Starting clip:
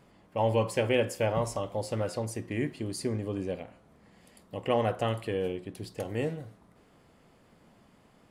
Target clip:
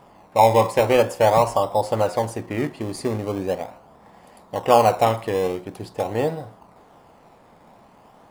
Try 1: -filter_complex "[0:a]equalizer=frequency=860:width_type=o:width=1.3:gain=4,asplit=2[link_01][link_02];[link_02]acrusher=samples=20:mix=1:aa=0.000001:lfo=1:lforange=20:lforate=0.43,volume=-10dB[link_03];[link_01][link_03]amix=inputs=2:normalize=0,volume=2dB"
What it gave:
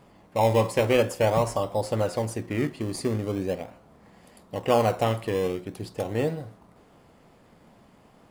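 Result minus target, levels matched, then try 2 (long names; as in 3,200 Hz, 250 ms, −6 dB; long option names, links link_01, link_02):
1,000 Hz band −4.0 dB
-filter_complex "[0:a]equalizer=frequency=860:width_type=o:width=1.3:gain=14.5,asplit=2[link_01][link_02];[link_02]acrusher=samples=20:mix=1:aa=0.000001:lfo=1:lforange=20:lforate=0.43,volume=-10dB[link_03];[link_01][link_03]amix=inputs=2:normalize=0,volume=2dB"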